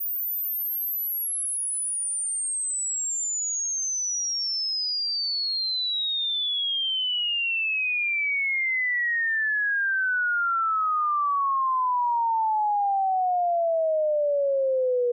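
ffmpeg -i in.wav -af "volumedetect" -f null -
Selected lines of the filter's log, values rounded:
mean_volume: -25.5 dB
max_volume: -20.3 dB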